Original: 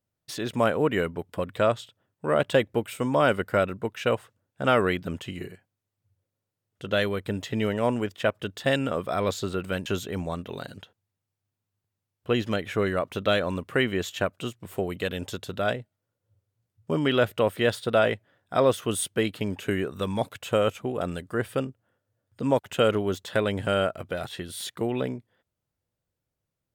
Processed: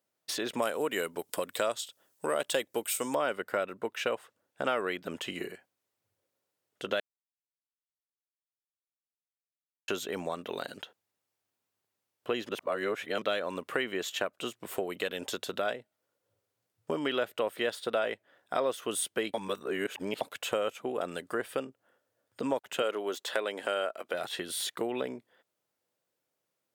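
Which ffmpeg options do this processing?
-filter_complex "[0:a]asettb=1/sr,asplit=3[s0][s1][s2];[s0]atrim=end=0.624[s3];[s1]atrim=start=0.62:end=3.15,asetpts=PTS-STARTPTS,afade=t=in:d=0.004:c=qsin,afade=t=out:st=2.526:d=0.004:c=qsin,bass=f=250:g=-1,treble=f=4000:g=15[s4];[s2]atrim=start=3.146[s5];[s3][s4]acrossfade=d=0.004:c1=hsin:c2=qsin[s6];[s6][s5]acrossfade=d=0.004:c1=qsin:c2=hsin,asettb=1/sr,asplit=3[s7][s8][s9];[s7]atrim=end=22.824[s10];[s8]atrim=start=22.82:end=24.14,asetpts=PTS-STARTPTS,afade=t=in:d=0.004:c=qsin,afade=t=out:st=1.316:d=0.004:c=qsin,highpass=320[s11];[s9]atrim=start=24.136[s12];[s10][s11]acrossfade=d=0.004:c1=hsin:c2=qsin[s13];[s13][s12]acrossfade=d=0.004:c1=qsin:c2=hsin,asplit=7[s14][s15][s16][s17][s18][s19][s20];[s14]atrim=end=7,asetpts=PTS-STARTPTS,afade=t=out:st=6.996:d=0.004:c=hsin[s21];[s15]atrim=start=7:end=9.88,asetpts=PTS-STARTPTS,volume=0[s22];[s16]atrim=start=9.88:end=12.492,asetpts=PTS-STARTPTS,afade=t=in:d=0.004:c=hsin[s23];[s17]atrim=start=12.488:end=13.222,asetpts=PTS-STARTPTS,areverse[s24];[s18]atrim=start=13.218:end=19.342[s25];[s19]atrim=start=19.338:end=20.212,asetpts=PTS-STARTPTS,areverse[s26];[s20]atrim=start=20.208[s27];[s21][s22][s23]concat=n=3:v=0:a=1[s28];[s28][s24]acrossfade=d=0.004:c1=hsin:c2=hsin[s29];[s29][s25]acrossfade=d=0.004:c1=hsin:c2=hsin[s30];[s30][s26]acrossfade=d=0.004:c1=hsin:c2=hsin[s31];[s31][s27]acrossfade=d=0.004:c1=hsin:c2=hsin,highpass=340,acompressor=threshold=0.0141:ratio=2.5,volume=1.68"

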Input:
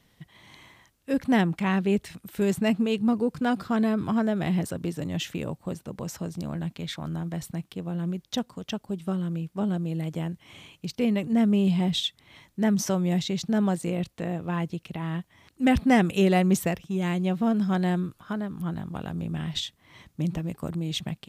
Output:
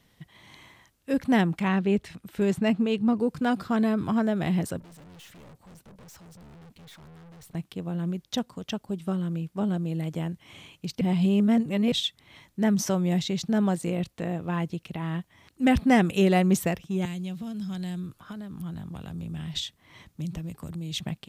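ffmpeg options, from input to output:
-filter_complex "[0:a]asettb=1/sr,asplit=3[s0][s1][s2];[s0]atrim=end=1.684[s3];[s1]atrim=start=1.68:end=3.2,asetpts=PTS-STARTPTS,afade=t=in:d=0.004:c=qsin,afade=t=out:st=1.516:d=0.004:c=qsin,highshelf=f=7300:g=-10.5[s4];[s2]atrim=start=3.196[s5];[s3][s4]acrossfade=d=0.004:c1=hsin:c2=qsin[s6];[s6][s5]acrossfade=d=0.004:c1=qsin:c2=hsin,asettb=1/sr,asplit=3[s7][s8][s9];[s7]atrim=end=4.804[s10];[s8]atrim=start=4.8:end=7.55,asetpts=PTS-STARTPTS,afade=t=in:d=0.004:c=qsin,afade=t=out:st=2.746:d=0.004:c=qsin,aeval=exprs='(tanh(251*val(0)+0.25)-tanh(0.25))/251':c=same[s11];[s9]atrim=start=7.546[s12];[s10][s11]acrossfade=d=0.004:c1=hsin:c2=qsin[s13];[s13][s12]acrossfade=d=0.004:c1=qsin:c2=hsin,asettb=1/sr,asplit=3[s14][s15][s16];[s14]atrim=end=17.054[s17];[s15]atrim=start=17.05:end=20.98,asetpts=PTS-STARTPTS,afade=t=in:d=0.004:c=qsin,afade=t=out:st=3.926:d=0.004:c=qsin,acrossover=split=150|3000[s18][s19][s20];[s19]acompressor=threshold=0.0126:ratio=10:attack=3.2:release=140:knee=2.83:detection=peak[s21];[s18][s21][s20]amix=inputs=3:normalize=0[s22];[s16]atrim=start=20.976[s23];[s17][s22]acrossfade=d=0.004:c1=hsin:c2=qsin[s24];[s24][s23]acrossfade=d=0.004:c1=qsin:c2=hsin,asplit=3[s25][s26][s27];[s25]atrim=end=11.012[s28];[s26]atrim=start=11.008:end=11.922,asetpts=PTS-STARTPTS,areverse[s29];[s27]atrim=start=11.918[s30];[s28][s29]acrossfade=d=0.004:c1=hsin:c2=hsin[s31];[s31][s30]acrossfade=d=0.004:c1=hsin:c2=hsin"

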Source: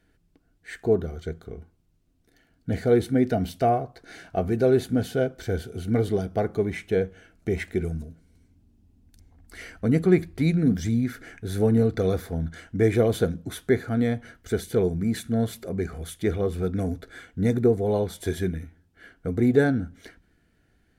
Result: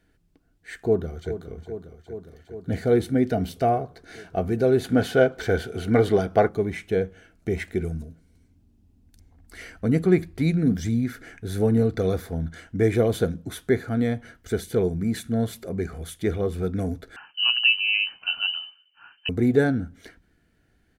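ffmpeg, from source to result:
-filter_complex "[0:a]asplit=2[s0][s1];[s1]afade=t=in:st=0.76:d=0.01,afade=t=out:st=1.54:d=0.01,aecho=0:1:410|820|1230|1640|2050|2460|2870|3280|3690|4100|4510|4920:0.266073|0.212858|0.170286|0.136229|0.108983|0.0871866|0.0697493|0.0557994|0.0446396|0.0357116|0.0285693|0.0228555[s2];[s0][s2]amix=inputs=2:normalize=0,asettb=1/sr,asplit=3[s3][s4][s5];[s3]atrim=end=4.844[s6];[s4]atrim=start=4.84:end=6.49,asetpts=PTS-STARTPTS,afade=t=in:d=0.004:c=qsin,afade=t=out:st=1.646:d=0.004:c=qsin,equalizer=f=1300:w=0.32:g=10[s7];[s5]atrim=start=6.486[s8];[s6][s7]acrossfade=d=0.004:c1=hsin:c2=qsin[s9];[s9][s8]acrossfade=d=0.004:c1=qsin:c2=hsin,asettb=1/sr,asplit=3[s10][s11][s12];[s10]atrim=end=17.164[s13];[s11]atrim=start=17.16:end=19.29,asetpts=PTS-STARTPTS,afade=t=in:d=0.004:c=qsin,afade=t=out:st=2.126:d=0.004:c=qsin,lowpass=f=2600:t=q:w=0.5098,lowpass=f=2600:t=q:w=0.6013,lowpass=f=2600:t=q:w=0.9,lowpass=f=2600:t=q:w=2.563,afreqshift=-3100[s14];[s12]atrim=start=19.286[s15];[s13][s14]acrossfade=d=0.004:c1=hsin:c2=qsin[s16];[s16][s15]acrossfade=d=0.004:c1=qsin:c2=hsin"

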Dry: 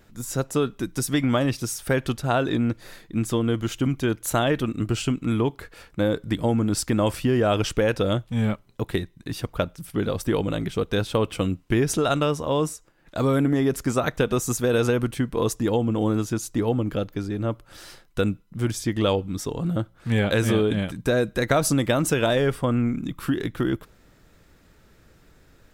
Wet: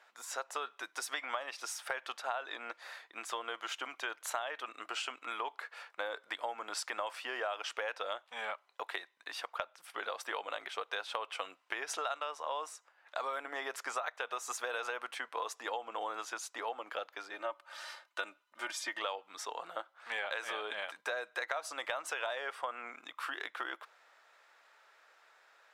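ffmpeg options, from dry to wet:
-filter_complex "[0:a]asettb=1/sr,asplit=3[s0][s1][s2];[s0]atrim=end=17.334[s3];[s1]atrim=start=17.33:end=18.99,asetpts=PTS-STARTPTS,afade=t=in:d=0.004:c=qsin,afade=t=out:st=1.656:d=0.004:c=qsin,aecho=1:1:3.3:0.78,atrim=end_sample=73206[s4];[s2]atrim=start=18.986[s5];[s3][s4]acrossfade=d=0.004:c1=hsin:c2=qsin[s6];[s6][s5]acrossfade=d=0.004:c1=qsin:c2=hsin,highpass=f=740:w=0.5412,highpass=f=740:w=1.3066,aemphasis=mode=reproduction:type=75fm,acompressor=threshold=0.0178:ratio=6,volume=1.12"

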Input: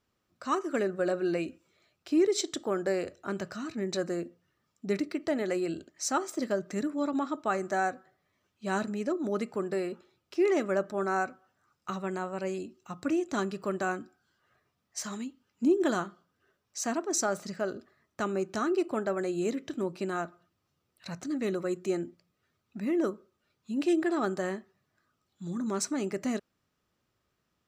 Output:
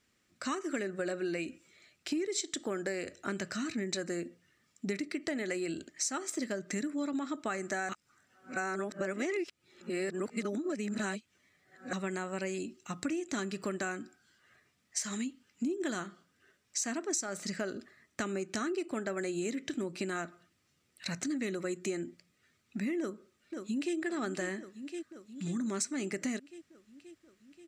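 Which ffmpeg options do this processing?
-filter_complex "[0:a]asplit=2[s0][s1];[s1]afade=t=in:st=22.99:d=0.01,afade=t=out:st=23.96:d=0.01,aecho=0:1:530|1060|1590|2120|2650|3180|3710|4240|4770:0.188365|0.131855|0.0922988|0.0646092|0.0452264|0.0316585|0.0221609|0.0155127|0.0108589[s2];[s0][s2]amix=inputs=2:normalize=0,asplit=3[s3][s4][s5];[s3]atrim=end=7.892[s6];[s4]atrim=start=7.888:end=11.932,asetpts=PTS-STARTPTS,areverse[s7];[s5]atrim=start=11.928[s8];[s6][s7]acrossfade=d=0.004:c1=hsin:c2=hsin[s9];[s9][s8]acrossfade=d=0.004:c1=hsin:c2=hsin,equalizer=f=250:t=o:w=1:g=5,equalizer=f=1000:t=o:w=1:g=-4,equalizer=f=2000:t=o:w=1:g=10,equalizer=f=4000:t=o:w=1:g=3,equalizer=f=8000:t=o:w=1:g=11,acompressor=threshold=0.0251:ratio=6"

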